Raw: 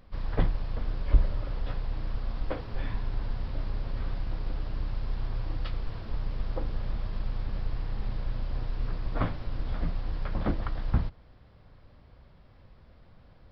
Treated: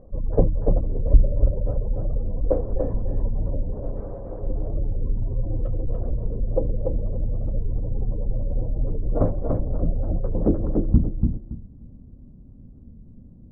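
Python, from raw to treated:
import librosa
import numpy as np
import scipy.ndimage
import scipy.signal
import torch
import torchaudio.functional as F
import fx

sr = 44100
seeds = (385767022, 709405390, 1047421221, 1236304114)

y = fx.low_shelf(x, sr, hz=220.0, db=-10.0, at=(3.72, 4.43))
y = fx.spec_gate(y, sr, threshold_db=-30, keep='strong')
y = fx.filter_sweep_lowpass(y, sr, from_hz=530.0, to_hz=250.0, start_s=10.26, end_s=11.05, q=2.7)
y = fx.echo_feedback(y, sr, ms=290, feedback_pct=23, wet_db=-4)
y = fx.record_warp(y, sr, rpm=45.0, depth_cents=160.0)
y = F.gain(torch.from_numpy(y), 6.5).numpy()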